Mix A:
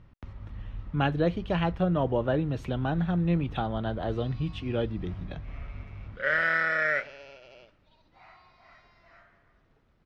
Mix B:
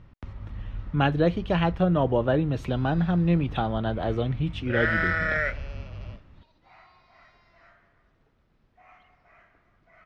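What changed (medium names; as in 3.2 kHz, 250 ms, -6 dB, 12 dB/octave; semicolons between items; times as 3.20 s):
speech +3.5 dB; background: entry -1.50 s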